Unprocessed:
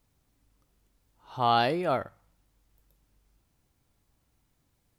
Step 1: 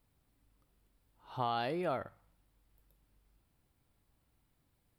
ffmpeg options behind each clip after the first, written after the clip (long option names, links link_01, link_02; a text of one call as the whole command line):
ffmpeg -i in.wav -af "equalizer=frequency=6300:width_type=o:width=0.52:gain=-8.5,acompressor=threshold=-28dB:ratio=6,volume=-3dB" out.wav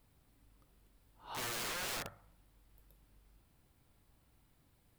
ffmpeg -i in.wav -filter_complex "[0:a]asplit=2[link_01][link_02];[link_02]alimiter=level_in=7.5dB:limit=-24dB:level=0:latency=1:release=187,volume=-7.5dB,volume=-2dB[link_03];[link_01][link_03]amix=inputs=2:normalize=0,aeval=exprs='(mod(56.2*val(0)+1,2)-1)/56.2':channel_layout=same" out.wav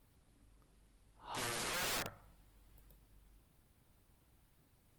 ffmpeg -i in.wav -af "volume=1.5dB" -ar 48000 -c:a libopus -b:a 20k out.opus